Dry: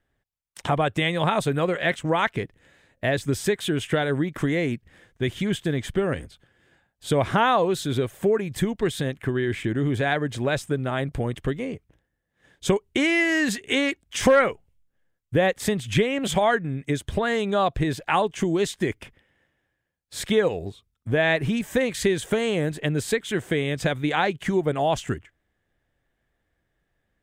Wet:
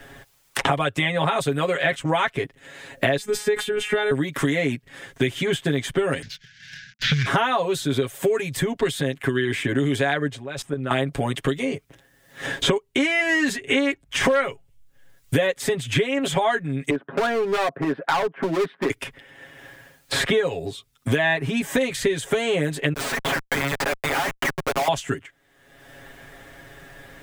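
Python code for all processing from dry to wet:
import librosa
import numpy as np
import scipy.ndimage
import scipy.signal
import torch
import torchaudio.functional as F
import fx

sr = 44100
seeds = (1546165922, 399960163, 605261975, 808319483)

y = fx.chain(x, sr, fx.highpass(hz=58.0, slope=12),
    fx.robotise(hz=210.0),
    fx.sustainer(db_per_s=78.0), at=(3.17, 4.11))
y = fx.chain(y, sr, fx.cvsd(bps=32000),
    fx.cheby1_bandstop(low_hz=220.0, high_hz=1500.0, order=5),
    fx.leveller(passes=1), at=(6.22, 7.26))
y = fx.chain(y, sr, fx.high_shelf(hz=4800.0, db=-6.5),
    fx.level_steps(step_db=21), at=(10.29, 10.91))
y = fx.chain(y, sr, fx.ellip_bandpass(low_hz=190.0, high_hz=1500.0, order=3, stop_db=60),
    fx.clip_hard(threshold_db=-22.5), at=(16.9, 18.9))
y = fx.chain(y, sr, fx.bessel_highpass(hz=1100.0, order=6),
    fx.transient(attack_db=3, sustain_db=-4),
    fx.schmitt(flips_db=-34.5), at=(22.93, 24.88))
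y = fx.low_shelf(y, sr, hz=200.0, db=-8.0)
y = y + 0.89 * np.pad(y, (int(7.3 * sr / 1000.0), 0))[:len(y)]
y = fx.band_squash(y, sr, depth_pct=100)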